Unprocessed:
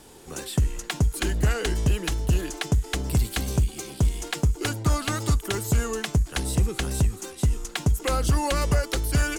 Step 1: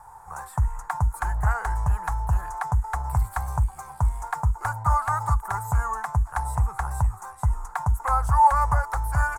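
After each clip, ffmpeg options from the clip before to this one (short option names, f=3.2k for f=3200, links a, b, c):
-af "firequalizer=gain_entry='entry(100,0);entry(280,-29);entry(870,15);entry(2900,-26);entry(8000,-8)':delay=0.05:min_phase=1"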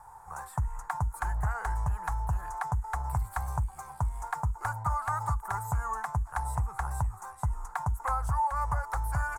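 -af "acompressor=threshold=-21dB:ratio=10,volume=-4dB"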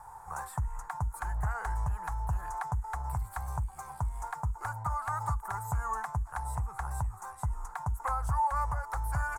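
-af "alimiter=limit=-23.5dB:level=0:latency=1:release=453,volume=2dB"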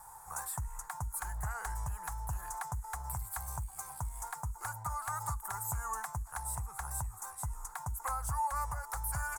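-af "crystalizer=i=4.5:c=0,volume=-6.5dB"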